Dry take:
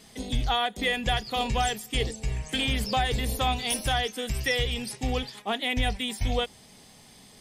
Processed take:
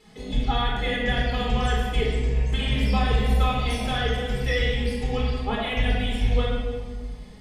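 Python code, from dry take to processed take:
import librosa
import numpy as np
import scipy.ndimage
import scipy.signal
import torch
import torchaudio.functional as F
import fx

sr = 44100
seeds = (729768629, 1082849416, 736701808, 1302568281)

y = fx.lowpass(x, sr, hz=2500.0, slope=6)
y = y + 0.4 * np.pad(y, (int(4.7 * sr / 1000.0), 0))[:len(y)]
y = fx.room_shoebox(y, sr, seeds[0], volume_m3=1800.0, walls='mixed', distance_m=4.1)
y = F.gain(torch.from_numpy(y), -4.0).numpy()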